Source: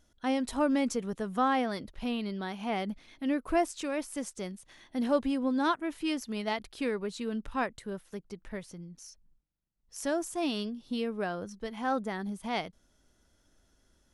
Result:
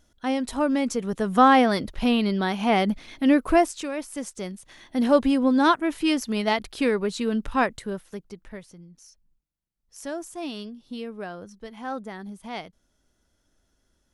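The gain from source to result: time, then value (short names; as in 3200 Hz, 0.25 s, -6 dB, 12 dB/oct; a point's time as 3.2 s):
0.88 s +4 dB
1.4 s +11.5 dB
3.41 s +11.5 dB
3.94 s +2 dB
5.21 s +9 dB
7.72 s +9 dB
8.72 s -2 dB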